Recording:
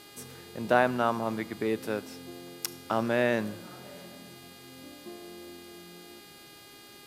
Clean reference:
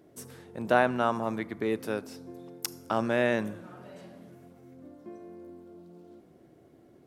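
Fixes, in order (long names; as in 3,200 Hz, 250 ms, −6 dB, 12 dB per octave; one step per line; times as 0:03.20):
hum removal 408 Hz, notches 12
noise reduction from a noise print 6 dB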